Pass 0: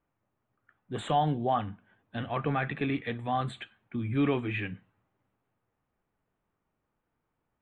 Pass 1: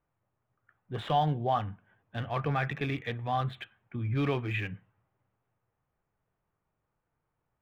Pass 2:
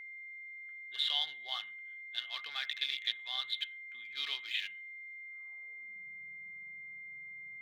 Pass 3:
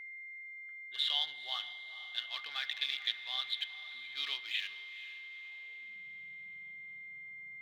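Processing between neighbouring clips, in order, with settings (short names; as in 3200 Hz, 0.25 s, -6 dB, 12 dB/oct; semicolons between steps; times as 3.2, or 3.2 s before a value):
Wiener smoothing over 9 samples; ten-band EQ 125 Hz +4 dB, 250 Hz -7 dB, 4000 Hz +5 dB, 8000 Hz -8 dB
thirty-one-band EQ 200 Hz +9 dB, 2500 Hz -8 dB, 4000 Hz +7 dB; high-pass sweep 3300 Hz -> 140 Hz, 5.13–6.03; whine 2100 Hz -48 dBFS; gain +3 dB
diffused feedback echo 0.466 s, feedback 49%, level -14 dB; reverb RT60 1.9 s, pre-delay 3 ms, DRR 16 dB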